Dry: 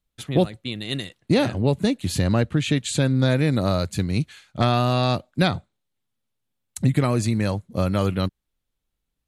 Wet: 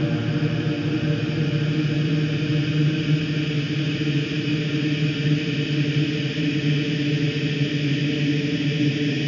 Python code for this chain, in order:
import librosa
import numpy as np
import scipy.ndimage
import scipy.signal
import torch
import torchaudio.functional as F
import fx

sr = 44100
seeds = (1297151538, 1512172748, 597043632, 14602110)

y = fx.freq_compress(x, sr, knee_hz=2600.0, ratio=1.5)
y = fx.paulstretch(y, sr, seeds[0], factor=48.0, window_s=0.5, from_s=2.53)